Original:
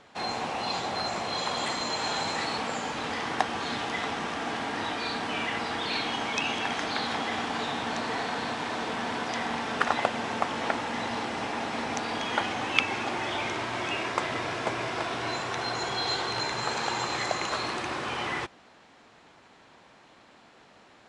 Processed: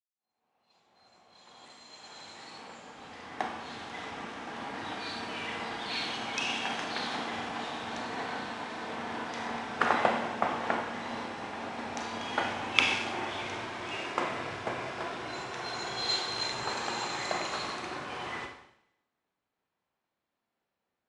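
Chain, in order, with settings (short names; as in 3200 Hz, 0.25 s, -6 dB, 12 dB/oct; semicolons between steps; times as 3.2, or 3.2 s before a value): opening faded in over 4.77 s; Schroeder reverb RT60 1.3 s, combs from 31 ms, DRR 2 dB; three-band expander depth 100%; gain -7 dB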